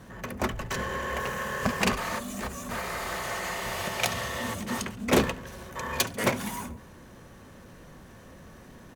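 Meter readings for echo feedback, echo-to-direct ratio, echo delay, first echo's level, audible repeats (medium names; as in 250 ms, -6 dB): 50%, -20.0 dB, 70 ms, -21.0 dB, 3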